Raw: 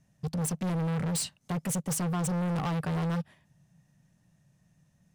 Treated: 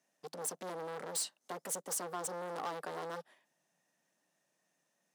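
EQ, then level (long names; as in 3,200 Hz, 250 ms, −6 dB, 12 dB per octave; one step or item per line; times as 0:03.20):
high-pass filter 330 Hz 24 dB per octave
dynamic equaliser 2,500 Hz, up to −7 dB, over −58 dBFS, Q 2
−3.5 dB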